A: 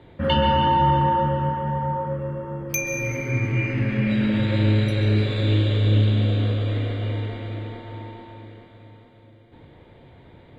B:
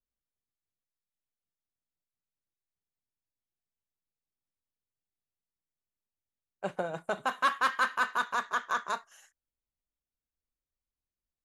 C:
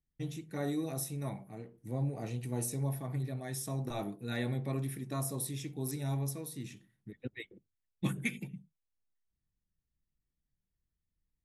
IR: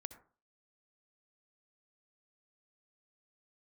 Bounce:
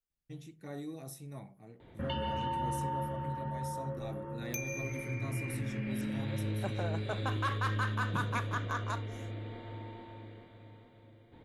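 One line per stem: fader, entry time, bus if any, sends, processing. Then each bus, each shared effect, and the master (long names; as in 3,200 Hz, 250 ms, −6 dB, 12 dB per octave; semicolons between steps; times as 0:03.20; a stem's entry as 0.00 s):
−7.5 dB, 1.80 s, no send, downward compressor 2 to 1, threshold −32 dBFS, peak gain reduction 10 dB
−3.5 dB, 0.00 s, no send, brickwall limiter −22 dBFS, peak gain reduction 5.5 dB
−7.5 dB, 0.10 s, no send, high-shelf EQ 10,000 Hz −5.5 dB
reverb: not used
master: no processing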